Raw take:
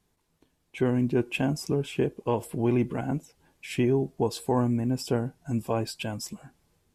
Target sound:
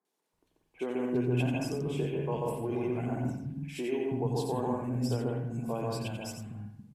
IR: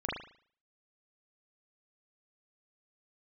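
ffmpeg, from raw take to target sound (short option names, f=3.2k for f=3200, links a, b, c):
-filter_complex "[0:a]acrossover=split=250|1600[a][b][c];[c]adelay=50[d];[a]adelay=330[e];[e][b][d]amix=inputs=3:normalize=0,asplit=2[f][g];[1:a]atrim=start_sample=2205,asetrate=33957,aresample=44100,adelay=88[h];[g][h]afir=irnorm=-1:irlink=0,volume=-7dB[i];[f][i]amix=inputs=2:normalize=0,volume=-7dB"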